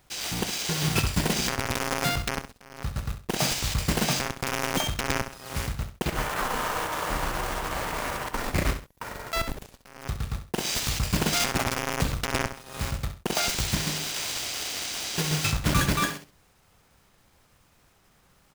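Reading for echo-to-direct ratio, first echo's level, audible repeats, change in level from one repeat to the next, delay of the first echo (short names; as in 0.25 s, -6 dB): -9.5 dB, -10.0 dB, 2, -11.5 dB, 66 ms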